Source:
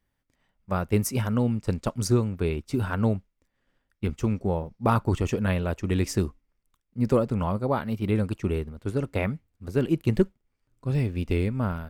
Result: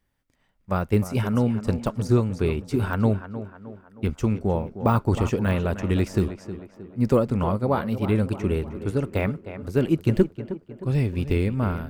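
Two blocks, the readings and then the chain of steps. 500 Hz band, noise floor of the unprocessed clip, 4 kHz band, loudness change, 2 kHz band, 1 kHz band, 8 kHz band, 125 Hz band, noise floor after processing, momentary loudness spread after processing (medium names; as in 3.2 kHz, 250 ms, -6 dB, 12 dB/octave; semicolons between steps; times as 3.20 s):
+3.0 dB, -77 dBFS, 0.0 dB, +2.5 dB, +2.0 dB, +2.0 dB, -6.5 dB, +2.5 dB, -66 dBFS, 12 LU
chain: on a send: tape echo 311 ms, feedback 55%, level -10.5 dB, low-pass 2.1 kHz; on the sum: de-esser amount 95%; trim +2.5 dB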